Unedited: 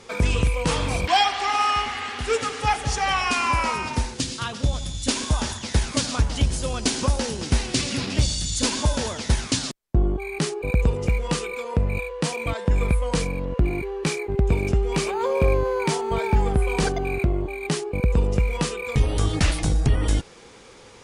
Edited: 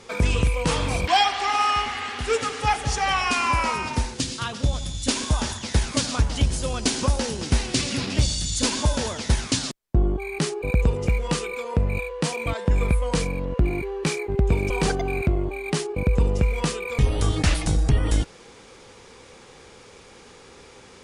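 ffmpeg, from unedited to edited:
-filter_complex "[0:a]asplit=2[a][b];[a]atrim=end=14.702[c];[b]atrim=start=16.668[d];[c][d]acrossfade=d=0.004:c1=hsin:c2=hsin"

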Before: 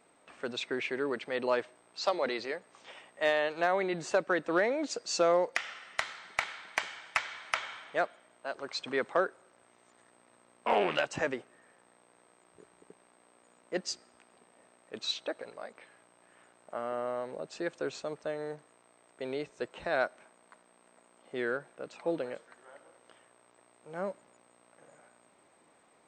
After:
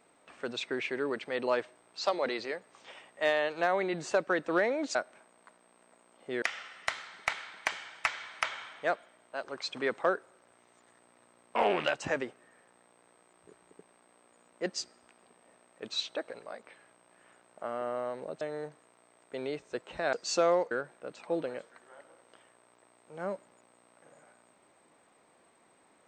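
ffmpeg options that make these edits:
-filter_complex "[0:a]asplit=6[a][b][c][d][e][f];[a]atrim=end=4.952[g];[b]atrim=start=19.998:end=21.472[h];[c]atrim=start=5.528:end=17.522[i];[d]atrim=start=18.278:end=20.002[j];[e]atrim=start=4.948:end=5.532[k];[f]atrim=start=21.468[l];[g][h]acrossfade=d=0.004:c1=hsin:c2=hsin[m];[m][i]acrossfade=d=0.004:c1=hsin:c2=hsin[n];[n][j]acrossfade=d=0.004:c1=hsin:c2=hsin[o];[o][k]acrossfade=d=0.004:c1=hsin:c2=hsin[p];[p][l]acrossfade=d=0.004:c1=hsin:c2=hsin"

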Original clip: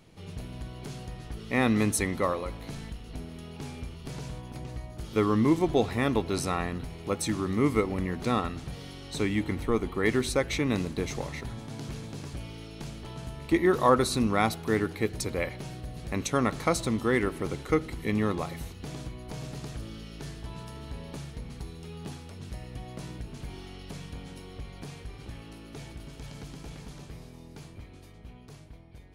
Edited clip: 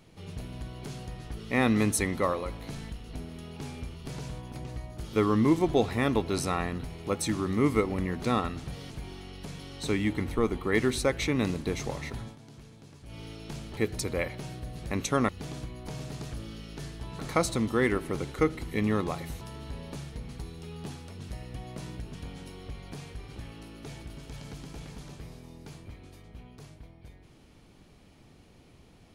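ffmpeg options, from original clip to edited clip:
-filter_complex "[0:a]asplit=10[a][b][c][d][e][f][g][h][i][j];[a]atrim=end=8.902[k];[b]atrim=start=23.358:end=24.052[l];[c]atrim=start=8.898:end=11.69,asetpts=PTS-STARTPTS,afade=t=out:st=2.572:d=0.22:c=qsin:silence=0.251189[m];[d]atrim=start=11.69:end=12.36,asetpts=PTS-STARTPTS,volume=-12dB[n];[e]atrim=start=12.36:end=13.082,asetpts=PTS-STARTPTS,afade=t=in:d=0.22:c=qsin:silence=0.251189[o];[f]atrim=start=14.978:end=16.502[p];[g]atrim=start=18.718:end=20.622[q];[h]atrim=start=16.498:end=18.722[r];[i]atrim=start=20.618:end=23.362[s];[j]atrim=start=24.048[t];[k][l]acrossfade=d=0.004:c1=hsin:c2=hsin[u];[m][n][o]concat=n=3:v=0:a=1[v];[u][v]acrossfade=d=0.004:c1=hsin:c2=hsin[w];[w][p]acrossfade=d=0.004:c1=hsin:c2=hsin[x];[x][q]acrossfade=d=0.004:c1=hsin:c2=hsin[y];[y][r]acrossfade=d=0.004:c1=hsin:c2=hsin[z];[z][s]acrossfade=d=0.004:c1=hsin:c2=hsin[aa];[aa][t]acrossfade=d=0.004:c1=hsin:c2=hsin"

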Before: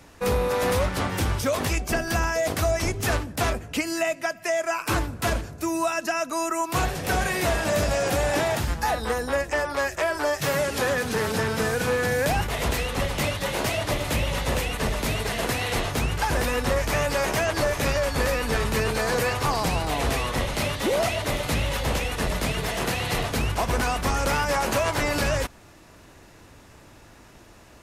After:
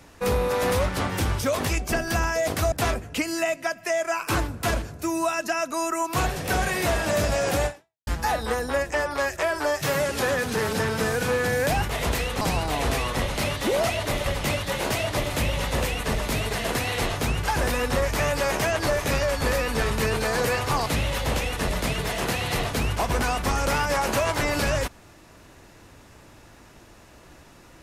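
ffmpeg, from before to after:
-filter_complex "[0:a]asplit=6[a][b][c][d][e][f];[a]atrim=end=2.722[g];[b]atrim=start=3.308:end=8.66,asetpts=PTS-STARTPTS,afade=t=out:st=4.942:d=0.41:c=exp[h];[c]atrim=start=8.66:end=13.002,asetpts=PTS-STARTPTS,afade=t=in:d=0.004:c=hsin[i];[d]atrim=start=19.598:end=21.452[j];[e]atrim=start=12.998:end=19.602[k];[f]atrim=start=21.448[l];[h][i]concat=n=2:v=0:a=1[m];[g][m]acrossfade=d=0.004:c1=hsin:c2=hsin[n];[n][j]acrossfade=d=0.004:c1=hsin:c2=hsin[o];[o][k]acrossfade=d=0.004:c1=hsin:c2=hsin[p];[p][l]acrossfade=d=0.004:c1=hsin:c2=hsin"

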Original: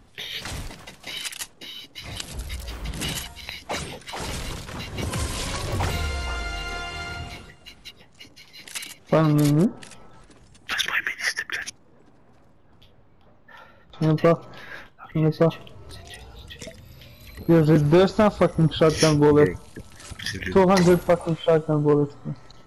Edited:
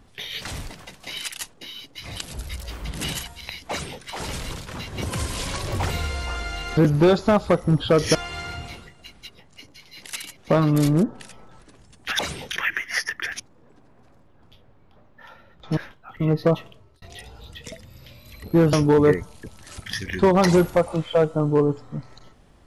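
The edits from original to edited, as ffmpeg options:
-filter_complex "[0:a]asplit=8[a][b][c][d][e][f][g][h];[a]atrim=end=6.772[i];[b]atrim=start=17.678:end=19.062[j];[c]atrim=start=6.768:end=10.812[k];[d]atrim=start=3.698:end=4.022[l];[e]atrim=start=10.808:end=14.072[m];[f]atrim=start=14.718:end=15.97,asetpts=PTS-STARTPTS,afade=t=out:st=0.752:d=0.5[n];[g]atrim=start=15.97:end=17.682,asetpts=PTS-STARTPTS,afade=t=in:d=0.004:c=hsin[o];[h]atrim=start=19.058[p];[i][j]acrossfade=d=0.004:c1=hsin:c2=hsin[q];[q][k]acrossfade=d=0.004:c1=hsin:c2=hsin[r];[r][l]acrossfade=d=0.004:c1=hsin:c2=hsin[s];[s][m]acrossfade=d=0.004:c1=hsin:c2=hsin[t];[n][o]concat=n=2:v=0:a=1[u];[t][u]acrossfade=d=0.004:c1=hsin:c2=hsin[v];[v][p]acrossfade=d=0.004:c1=hsin:c2=hsin"

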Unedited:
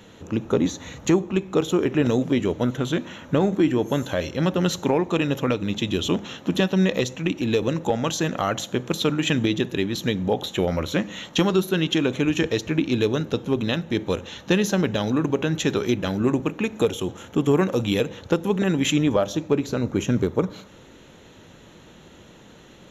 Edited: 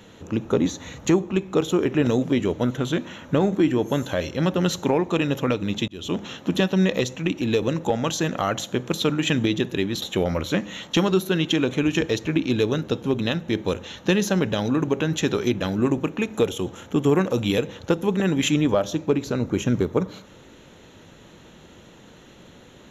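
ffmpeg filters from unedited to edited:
-filter_complex "[0:a]asplit=3[a][b][c];[a]atrim=end=5.88,asetpts=PTS-STARTPTS,afade=t=out:st=5.876:d=0.004:c=hsin[d];[b]atrim=start=5.88:end=10.022,asetpts=PTS-STARTPTS,afade=t=in:d=0.36[e];[c]atrim=start=10.438[f];[d][e]concat=n=2:v=0:a=1[g];[g][f]acrossfade=d=0.004:c1=hsin:c2=hsin"

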